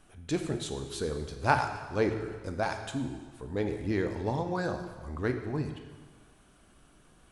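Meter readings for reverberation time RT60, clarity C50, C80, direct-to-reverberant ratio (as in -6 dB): 1.5 s, 7.5 dB, 9.0 dB, 5.5 dB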